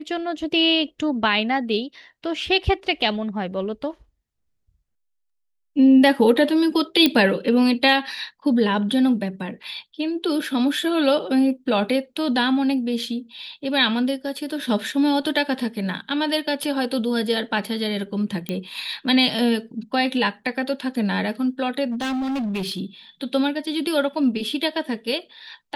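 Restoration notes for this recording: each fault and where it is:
7.06 pop -4 dBFS
9.63–9.64 gap 5.5 ms
18.49 pop -13 dBFS
21.9–22.81 clipped -22.5 dBFS

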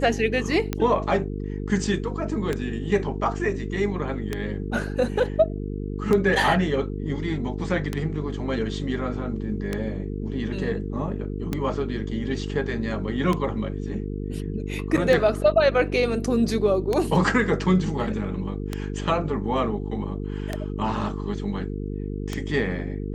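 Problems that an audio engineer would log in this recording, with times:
buzz 50 Hz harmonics 9 -30 dBFS
tick 33 1/3 rpm -11 dBFS
14.97–14.98 gap 6 ms

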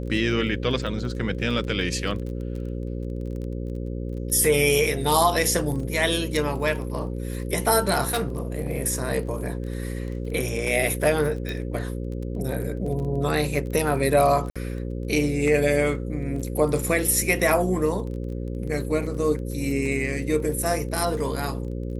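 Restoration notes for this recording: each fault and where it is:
buzz 60 Hz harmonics 9 -30 dBFS
crackle 21/s -33 dBFS
8.08–8.7 clipped -20 dBFS
11.49 pop
14.5–14.56 gap 56 ms

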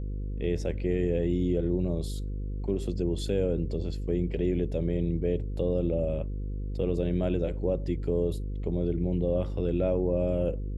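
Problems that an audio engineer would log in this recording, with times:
buzz 50 Hz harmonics 10 -33 dBFS

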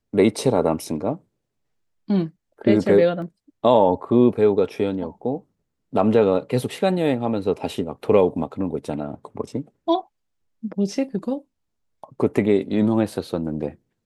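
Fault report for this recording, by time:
3.22 gap 2.3 ms

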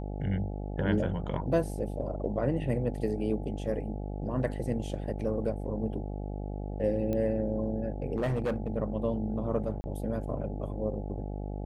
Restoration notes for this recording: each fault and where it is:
buzz 50 Hz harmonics 17 -36 dBFS
7.13 pop -21 dBFS
8.16–8.68 clipped -25.5 dBFS
9.81–9.84 gap 30 ms

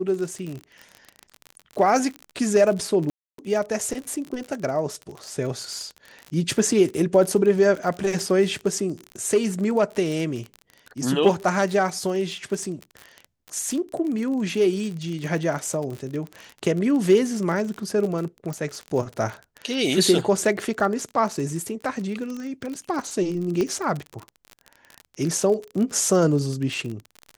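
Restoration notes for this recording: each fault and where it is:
crackle 40/s -28 dBFS
3.1–3.38 gap 0.283 s
18.53 pop -18 dBFS
23.61 pop -13 dBFS

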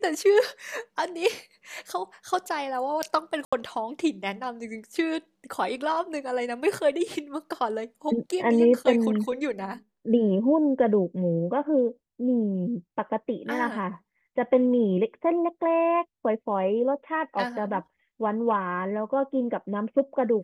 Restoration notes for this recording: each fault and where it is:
3.45–3.52 gap 75 ms

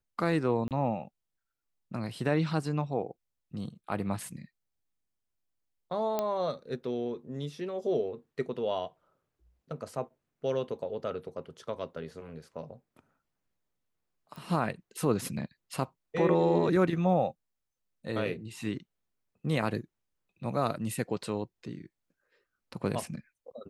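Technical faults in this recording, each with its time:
0.68–0.71 gap 28 ms
6.19 pop -16 dBFS
14.36 pop -32 dBFS

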